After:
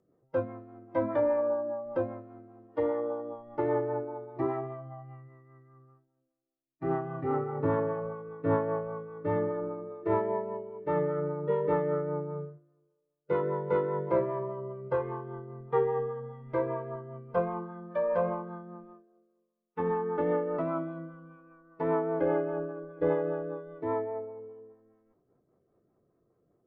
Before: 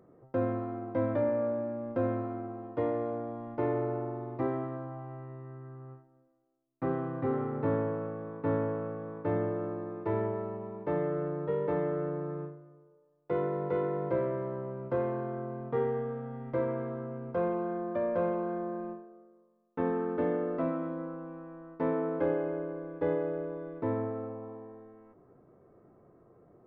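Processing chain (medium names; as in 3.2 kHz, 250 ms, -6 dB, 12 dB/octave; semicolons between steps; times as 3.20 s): spectral noise reduction 14 dB; rotary cabinet horn 5 Hz; dynamic bell 980 Hz, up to +8 dB, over -53 dBFS, Q 1.4; trim +3.5 dB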